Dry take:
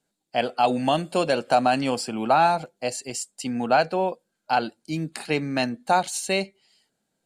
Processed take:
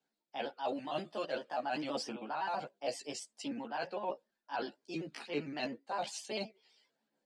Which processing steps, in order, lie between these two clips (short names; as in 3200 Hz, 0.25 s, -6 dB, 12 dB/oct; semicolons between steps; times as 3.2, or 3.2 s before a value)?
trilling pitch shifter +2 st, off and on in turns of 65 ms; three-band isolator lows -21 dB, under 210 Hz, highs -22 dB, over 6100 Hz; reverse; compressor 10:1, threshold -29 dBFS, peak gain reduction 14.5 dB; reverse; chorus voices 4, 0.54 Hz, delay 14 ms, depth 1.1 ms; wow and flutter 21 cents; gain -2 dB